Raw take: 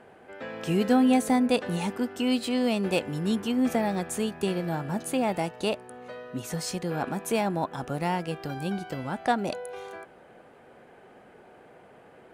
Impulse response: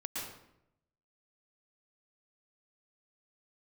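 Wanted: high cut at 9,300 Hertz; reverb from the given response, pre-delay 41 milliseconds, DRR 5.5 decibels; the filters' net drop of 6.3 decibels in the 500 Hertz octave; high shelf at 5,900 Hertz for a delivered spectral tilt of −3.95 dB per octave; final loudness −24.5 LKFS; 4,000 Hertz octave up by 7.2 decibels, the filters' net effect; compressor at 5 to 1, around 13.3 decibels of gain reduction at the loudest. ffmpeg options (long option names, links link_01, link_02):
-filter_complex "[0:a]lowpass=9300,equalizer=frequency=500:width_type=o:gain=-8,equalizer=frequency=4000:width_type=o:gain=7.5,highshelf=frequency=5900:gain=6.5,acompressor=threshold=-35dB:ratio=5,asplit=2[link_01][link_02];[1:a]atrim=start_sample=2205,adelay=41[link_03];[link_02][link_03]afir=irnorm=-1:irlink=0,volume=-7.5dB[link_04];[link_01][link_04]amix=inputs=2:normalize=0,volume=13dB"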